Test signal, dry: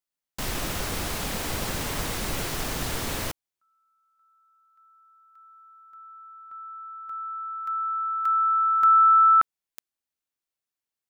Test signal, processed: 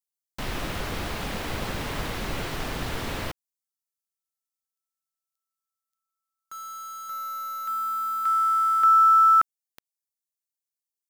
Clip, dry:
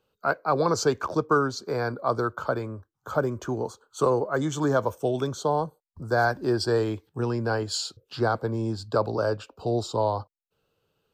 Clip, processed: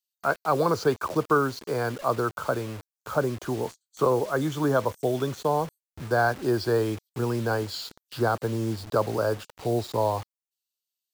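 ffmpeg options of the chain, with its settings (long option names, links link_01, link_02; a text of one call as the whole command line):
ffmpeg -i in.wav -filter_complex "[0:a]acrossover=split=4500[link_01][link_02];[link_01]acrusher=bits=6:mix=0:aa=0.000001[link_03];[link_02]acompressor=threshold=-50dB:ratio=6:attack=3.7:release=64:detection=rms[link_04];[link_03][link_04]amix=inputs=2:normalize=0" out.wav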